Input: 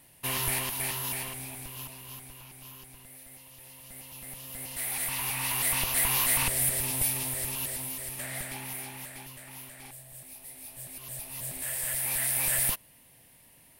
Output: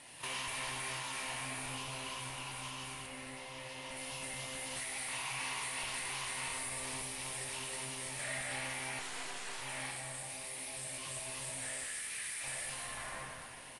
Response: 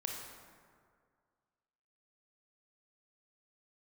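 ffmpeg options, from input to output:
-filter_complex "[1:a]atrim=start_sample=2205[link_01];[0:a][link_01]afir=irnorm=-1:irlink=0,acompressor=threshold=-42dB:ratio=6,asettb=1/sr,asplit=3[link_02][link_03][link_04];[link_02]atrim=end=3.064[link_05];[link_03]atrim=start=3.06:end=3.97,asetpts=PTS-STARTPTS,afade=type=in:duration=0.004:curve=qsin,afade=type=out:start_time=0.906:duration=0.004:curve=qsin,highshelf=frequency=6500:gain=-11.5[link_06];[link_04]atrim=start=3.966[link_07];[link_05][link_06]acrossfade=duration=0.004:curve1=hsin:curve2=qsin[link_08];[link_08][link_07]acrossfade=duration=0.004:curve1=qsin:curve2=hsin,asettb=1/sr,asplit=3[link_09][link_10][link_11];[link_09]atrim=end=8.994[link_12];[link_10]atrim=start=8.99:end=9.62,asetpts=PTS-STARTPTS,afade=type=in:duration=0.004:curve=qsin,afade=type=out:start_time=0.626:duration=0.004:curve=qsin,aeval=exprs='abs(val(0))':channel_layout=same[link_13];[link_11]atrim=start=9.616[link_14];[link_12][link_13]acrossfade=duration=0.004:curve1=hsin:curve2=qsin[link_15];[link_15][link_14]acrossfade=duration=0.004:curve1=qsin:curve2=hsin,asettb=1/sr,asplit=3[link_16][link_17][link_18];[link_16]atrim=end=11.844[link_19];[link_17]atrim=start=11.84:end=12.44,asetpts=PTS-STARTPTS,afade=type=in:duration=0.004:curve=qsin,afade=type=out:start_time=0.596:duration=0.004:curve=qsin,highpass=frequency=1300:width=0.5412,highpass=frequency=1300:width=1.3066[link_20];[link_18]atrim=start=12.436[link_21];[link_19][link_20]acrossfade=duration=0.004:curve1=hsin:curve2=qsin[link_22];[link_22][link_21]acrossfade=duration=0.004:curve1=qsin:curve2=hsin,asplit=2[link_23][link_24];[link_24]highpass=frequency=720:poles=1,volume=15dB,asoftclip=type=tanh:threshold=-30dB[link_25];[link_23][link_25]amix=inputs=2:normalize=0,lowpass=frequency=7900:poles=1,volume=-6dB,aecho=1:1:96|192|288|384|480|576:0.335|0.174|0.0906|0.0471|0.0245|0.0127" -ar 22050 -c:a aac -b:a 32k

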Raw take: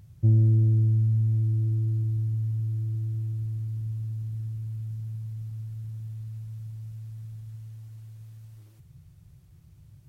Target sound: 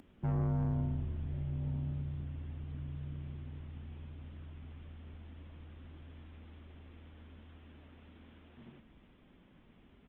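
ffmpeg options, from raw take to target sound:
ffmpeg -i in.wav -filter_complex "[0:a]highpass=frequency=430:width_type=q:width=4.9,aresample=8000,asoftclip=type=tanh:threshold=-35.5dB,aresample=44100,afreqshift=-190,asplit=4[link_01][link_02][link_03][link_04];[link_02]adelay=353,afreqshift=-36,volume=-17dB[link_05];[link_03]adelay=706,afreqshift=-72,volume=-25.6dB[link_06];[link_04]adelay=1059,afreqshift=-108,volume=-34.3dB[link_07];[link_01][link_05][link_06][link_07]amix=inputs=4:normalize=0,volume=7dB" -ar 48000 -c:a libopus -b:a 24k out.opus

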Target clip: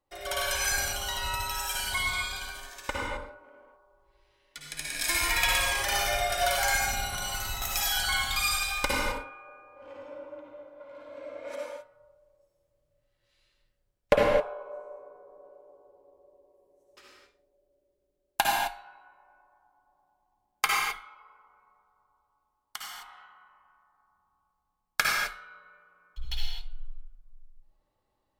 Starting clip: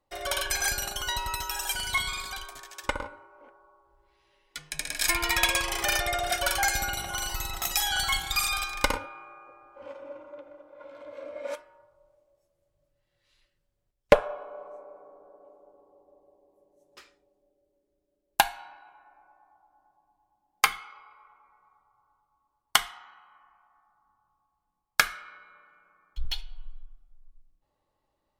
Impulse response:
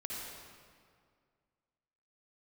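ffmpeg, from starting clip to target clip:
-filter_complex "[0:a]asettb=1/sr,asplit=3[link_01][link_02][link_03];[link_01]atrim=end=20.954[link_04];[link_02]atrim=start=20.95:end=22.92,asetpts=PTS-STARTPTS,afade=type=in:duration=0.004:curve=qsin,afade=type=out:start_time=1.966:duration=0.004:curve=qsin,acrossover=split=660|1700|7600[link_05][link_06][link_07][link_08];[link_05]acompressor=threshold=-59dB:ratio=4[link_09];[link_06]acompressor=threshold=-43dB:ratio=4[link_10];[link_07]acompressor=threshold=-39dB:ratio=4[link_11];[link_08]acompressor=threshold=-44dB:ratio=4[link_12];[link_09][link_10][link_11][link_12]amix=inputs=4:normalize=0[link_13];[link_03]atrim=start=22.916[link_14];[link_04][link_13]acrossfade=duration=0.004:curve1=hsin:curve2=qsin[link_15];[link_15][link_14]acrossfade=duration=0.004:curve1=qsin:curve2=hsin[link_16];[1:a]atrim=start_sample=2205,afade=type=out:start_time=0.32:duration=0.01,atrim=end_sample=14553[link_17];[link_16][link_17]afir=irnorm=-1:irlink=0"

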